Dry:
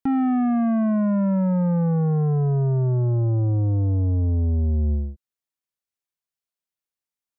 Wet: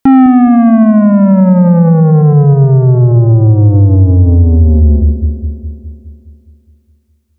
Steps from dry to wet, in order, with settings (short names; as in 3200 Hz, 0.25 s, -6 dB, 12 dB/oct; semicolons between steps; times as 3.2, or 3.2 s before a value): dark delay 0.207 s, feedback 59%, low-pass 470 Hz, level -8 dB; maximiser +17.5 dB; gain -1 dB